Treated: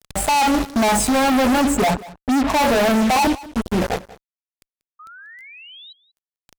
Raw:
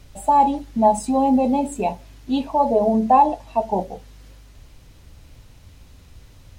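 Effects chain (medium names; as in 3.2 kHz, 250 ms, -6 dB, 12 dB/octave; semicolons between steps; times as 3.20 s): 1.63–2.50 s: spectral contrast enhancement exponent 1.7; 3.27–3.82 s: elliptic band-stop 340–3500 Hz; in parallel at +1.5 dB: gain riding within 3 dB 2 s; on the sum: fuzz box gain 34 dB, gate -30 dBFS; 4.99–5.93 s: painted sound rise 1.2–4 kHz -39 dBFS; on a send: delay 188 ms -19.5 dB; on the sum: trim -2 dB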